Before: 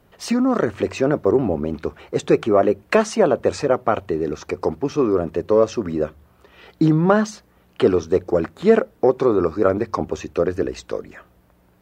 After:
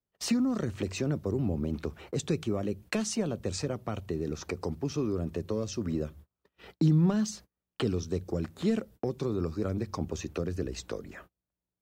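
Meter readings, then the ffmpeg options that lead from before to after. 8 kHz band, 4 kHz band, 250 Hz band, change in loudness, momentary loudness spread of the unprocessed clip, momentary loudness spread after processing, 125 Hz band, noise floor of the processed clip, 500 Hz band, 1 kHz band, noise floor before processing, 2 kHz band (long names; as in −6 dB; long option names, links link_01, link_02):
−2.5 dB, −5.0 dB, −9.0 dB, −12.0 dB, 9 LU, 8 LU, −3.5 dB, below −85 dBFS, −16.5 dB, −18.5 dB, −57 dBFS, −13.5 dB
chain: -filter_complex "[0:a]acrossover=split=210|3000[link_01][link_02][link_03];[link_02]acompressor=threshold=-29dB:ratio=10[link_04];[link_01][link_04][link_03]amix=inputs=3:normalize=0,agate=range=-33dB:threshold=-45dB:ratio=16:detection=peak,equalizer=frequency=1200:width=0.32:gain=-4,volume=-1.5dB"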